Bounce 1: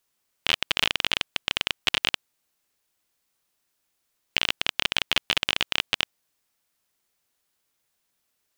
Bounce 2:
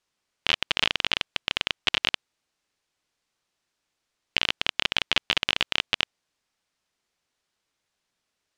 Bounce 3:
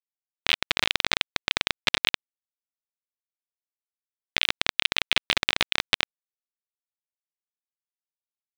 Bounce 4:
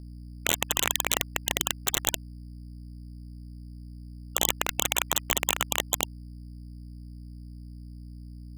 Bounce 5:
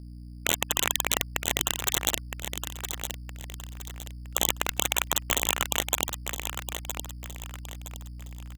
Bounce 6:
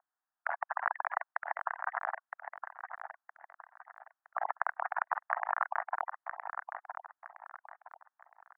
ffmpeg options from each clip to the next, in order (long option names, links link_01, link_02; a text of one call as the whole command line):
ffmpeg -i in.wav -af "lowpass=6300" out.wav
ffmpeg -i in.wav -af "aeval=exprs='sgn(val(0))*max(abs(val(0))-0.0316,0)':channel_layout=same,aeval=exprs='val(0)*sin(2*PI*510*n/s)':channel_layout=same,alimiter=level_in=12dB:limit=-1dB:release=50:level=0:latency=1,volume=-1dB" out.wav
ffmpeg -i in.wav -af "aeval=exprs='val(0)+0.00631*(sin(2*PI*60*n/s)+sin(2*PI*2*60*n/s)/2+sin(2*PI*3*60*n/s)/3+sin(2*PI*4*60*n/s)/4+sin(2*PI*5*60*n/s)/5)':channel_layout=same,acrusher=samples=9:mix=1:aa=0.000001,afftfilt=real='re*lt(hypot(re,im),0.126)':imag='im*lt(hypot(re,im),0.126)':win_size=1024:overlap=0.75,volume=3dB" out.wav
ffmpeg -i in.wav -af "aecho=1:1:965|1930|2895|3860:0.398|0.139|0.0488|0.0171" out.wav
ffmpeg -i in.wav -af "asuperpass=centerf=1100:order=12:qfactor=1,volume=1.5dB" out.wav